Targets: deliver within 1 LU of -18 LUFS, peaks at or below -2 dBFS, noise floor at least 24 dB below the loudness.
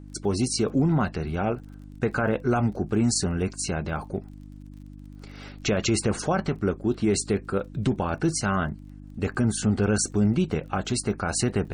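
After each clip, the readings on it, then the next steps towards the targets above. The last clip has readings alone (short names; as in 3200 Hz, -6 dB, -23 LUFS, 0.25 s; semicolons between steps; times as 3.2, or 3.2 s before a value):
ticks 29/s; hum 50 Hz; harmonics up to 300 Hz; hum level -42 dBFS; loudness -26.0 LUFS; peak -13.5 dBFS; loudness target -18.0 LUFS
-> de-click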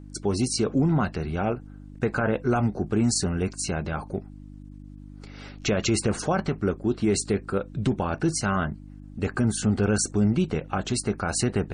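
ticks 0.085/s; hum 50 Hz; harmonics up to 300 Hz; hum level -42 dBFS
-> de-hum 50 Hz, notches 6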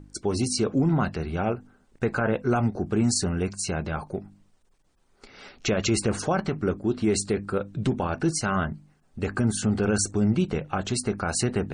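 hum none; loudness -26.0 LUFS; peak -12.5 dBFS; loudness target -18.0 LUFS
-> gain +8 dB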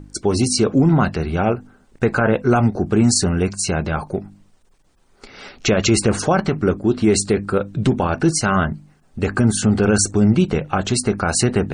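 loudness -18.5 LUFS; peak -4.5 dBFS; noise floor -56 dBFS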